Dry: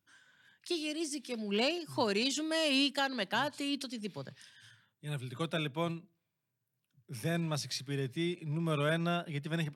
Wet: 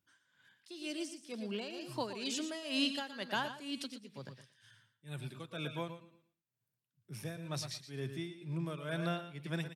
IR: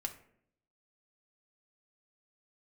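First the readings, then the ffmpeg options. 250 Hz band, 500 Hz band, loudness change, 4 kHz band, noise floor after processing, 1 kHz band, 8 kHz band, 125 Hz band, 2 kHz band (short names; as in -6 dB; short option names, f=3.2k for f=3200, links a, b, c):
-5.5 dB, -7.5 dB, -6.0 dB, -5.5 dB, under -85 dBFS, -5.5 dB, -4.5 dB, -5.5 dB, -6.0 dB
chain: -filter_complex "[0:a]asplit=2[a][b];[b]aecho=0:1:111|222|333:0.251|0.0527|0.0111[c];[a][c]amix=inputs=2:normalize=0,tremolo=f=2.1:d=0.77,asplit=2[d][e];[e]aecho=0:1:119:0.251[f];[d][f]amix=inputs=2:normalize=0,volume=-2.5dB"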